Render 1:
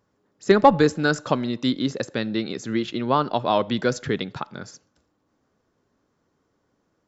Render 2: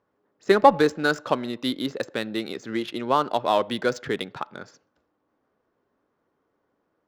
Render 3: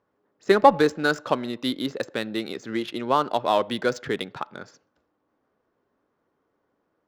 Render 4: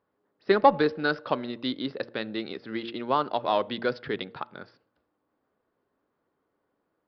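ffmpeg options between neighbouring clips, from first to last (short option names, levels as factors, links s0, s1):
-af "bass=f=250:g=-10,treble=f=4000:g=-1,adynamicsmooth=sensitivity=6.5:basefreq=3100"
-af anull
-af "bandreject=f=116.1:t=h:w=4,bandreject=f=232.2:t=h:w=4,bandreject=f=348.3:t=h:w=4,bandreject=f=464.4:t=h:w=4,bandreject=f=580.5:t=h:w=4,aresample=11025,aresample=44100,volume=0.668"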